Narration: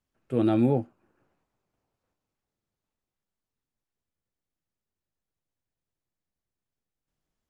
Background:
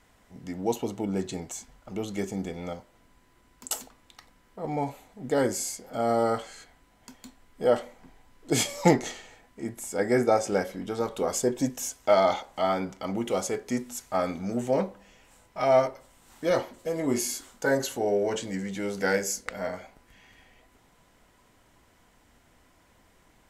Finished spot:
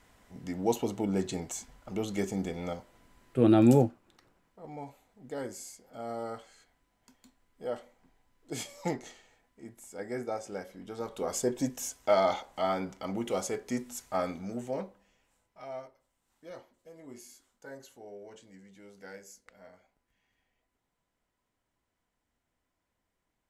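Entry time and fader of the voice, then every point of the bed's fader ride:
3.05 s, +2.0 dB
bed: 3.44 s -0.5 dB
3.72 s -13 dB
10.62 s -13 dB
11.41 s -4 dB
14.21 s -4 dB
15.84 s -21.5 dB

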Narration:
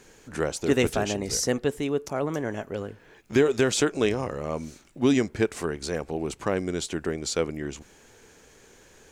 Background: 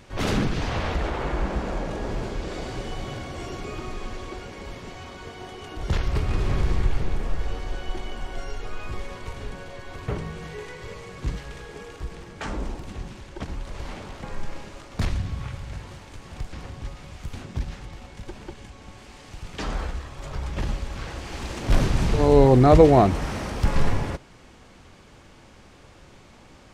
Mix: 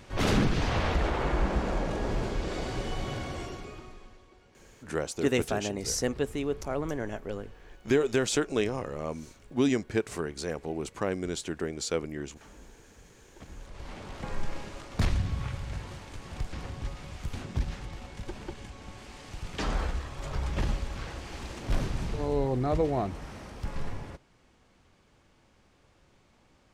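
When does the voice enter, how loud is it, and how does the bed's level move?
4.55 s, -4.0 dB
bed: 3.32 s -1 dB
4.27 s -22 dB
13 s -22 dB
14.25 s -1 dB
20.55 s -1 dB
22.46 s -13.5 dB

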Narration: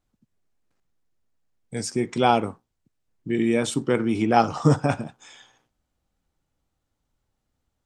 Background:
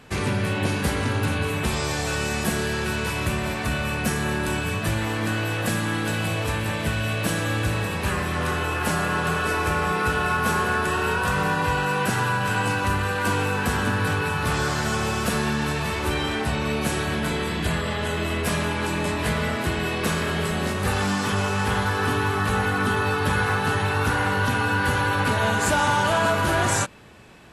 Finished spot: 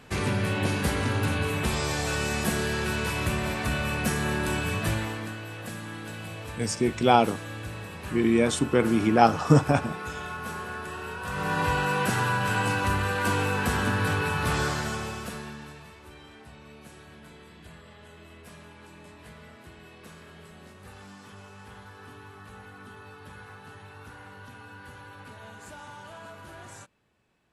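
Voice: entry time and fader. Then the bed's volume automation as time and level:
4.85 s, 0.0 dB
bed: 4.92 s -2.5 dB
5.38 s -13 dB
11.19 s -13 dB
11.59 s -2.5 dB
14.63 s -2.5 dB
16 s -23.5 dB

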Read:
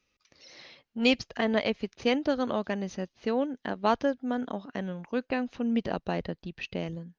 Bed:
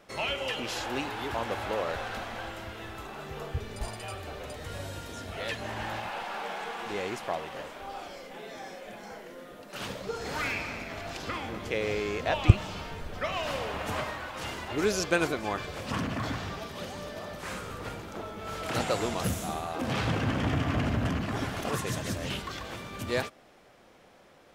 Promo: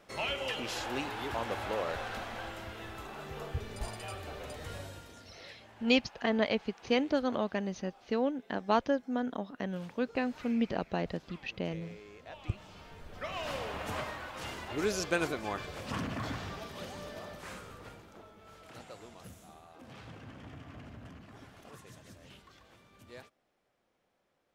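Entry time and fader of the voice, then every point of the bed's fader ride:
4.85 s, -2.5 dB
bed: 4.7 s -3 dB
5.54 s -20 dB
12.28 s -20 dB
13.49 s -4.5 dB
17.19 s -4.5 dB
18.83 s -20.5 dB

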